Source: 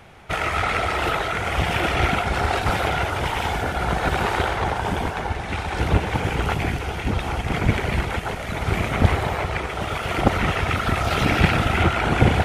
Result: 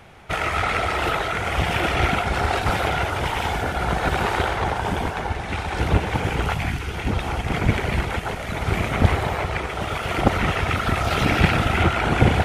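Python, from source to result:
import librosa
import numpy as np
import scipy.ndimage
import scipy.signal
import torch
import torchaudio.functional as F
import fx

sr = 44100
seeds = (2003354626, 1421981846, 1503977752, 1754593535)

y = fx.peak_eq(x, sr, hz=fx.line((6.47, 270.0), (6.93, 780.0)), db=-13.5, octaves=0.69, at=(6.47, 6.93), fade=0.02)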